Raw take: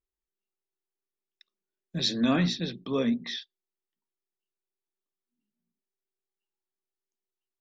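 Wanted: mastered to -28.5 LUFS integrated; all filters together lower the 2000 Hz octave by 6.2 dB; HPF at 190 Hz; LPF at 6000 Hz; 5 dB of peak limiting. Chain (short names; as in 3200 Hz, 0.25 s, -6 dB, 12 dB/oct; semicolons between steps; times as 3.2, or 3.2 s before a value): HPF 190 Hz; LPF 6000 Hz; bell 2000 Hz -8 dB; gain +3 dB; limiter -17.5 dBFS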